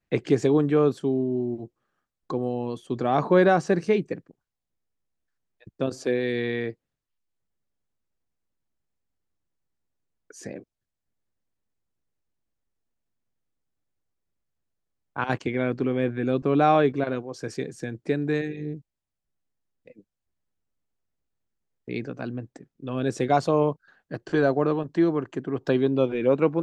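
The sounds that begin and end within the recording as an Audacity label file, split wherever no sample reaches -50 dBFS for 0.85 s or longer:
5.610000	6.740000	sound
10.300000	10.640000	sound
15.160000	18.810000	sound
19.860000	20.010000	sound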